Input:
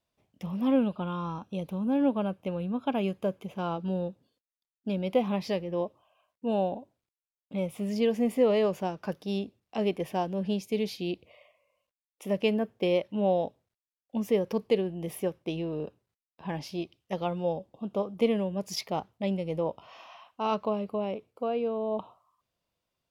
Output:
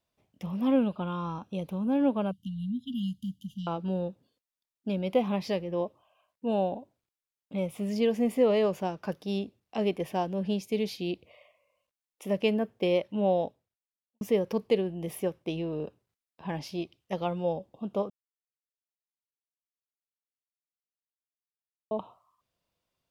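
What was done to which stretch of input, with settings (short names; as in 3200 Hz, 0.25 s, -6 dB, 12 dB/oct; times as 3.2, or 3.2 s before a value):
2.31–3.67 brick-wall FIR band-stop 270–2800 Hz
13.43–14.21 fade out quadratic
18.1–21.91 mute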